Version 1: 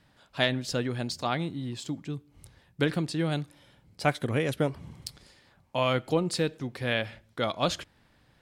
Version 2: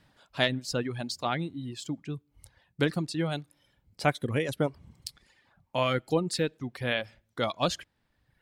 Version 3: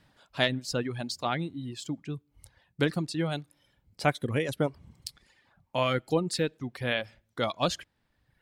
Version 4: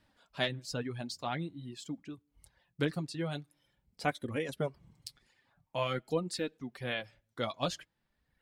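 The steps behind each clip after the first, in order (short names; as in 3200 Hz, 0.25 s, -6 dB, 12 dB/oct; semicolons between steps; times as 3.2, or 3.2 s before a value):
reverb removal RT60 1.1 s
nothing audible
flange 0.47 Hz, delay 3.2 ms, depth 5 ms, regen -33%; gain -2.5 dB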